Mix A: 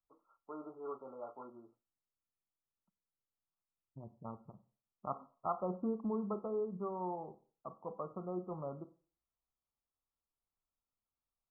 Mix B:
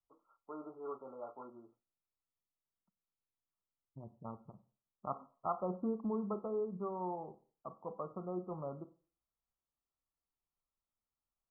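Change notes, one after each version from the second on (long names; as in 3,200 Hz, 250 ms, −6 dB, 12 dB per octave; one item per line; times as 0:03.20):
nothing changed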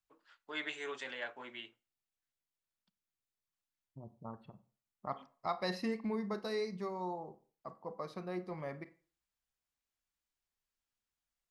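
master: remove linear-phase brick-wall low-pass 1,400 Hz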